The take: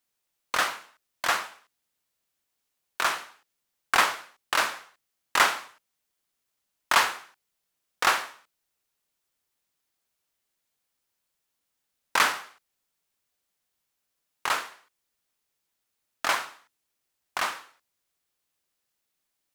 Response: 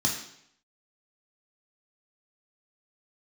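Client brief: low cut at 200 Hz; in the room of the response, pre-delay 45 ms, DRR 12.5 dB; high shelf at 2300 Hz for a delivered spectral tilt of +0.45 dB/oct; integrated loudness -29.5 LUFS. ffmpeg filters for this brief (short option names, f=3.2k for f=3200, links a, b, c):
-filter_complex "[0:a]highpass=200,highshelf=f=2.3k:g=6,asplit=2[a][b];[1:a]atrim=start_sample=2205,adelay=45[c];[b][c]afir=irnorm=-1:irlink=0,volume=-21.5dB[d];[a][d]amix=inputs=2:normalize=0,volume=-6dB"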